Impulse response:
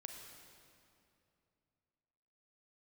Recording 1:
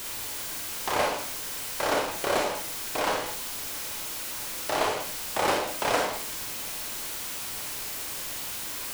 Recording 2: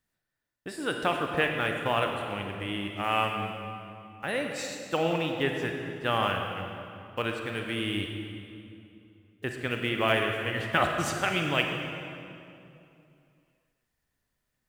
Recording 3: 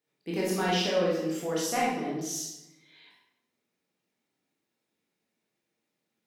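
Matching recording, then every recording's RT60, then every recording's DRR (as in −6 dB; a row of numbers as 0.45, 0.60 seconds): 2; 0.45, 2.7, 0.85 seconds; 0.5, 2.5, −5.5 decibels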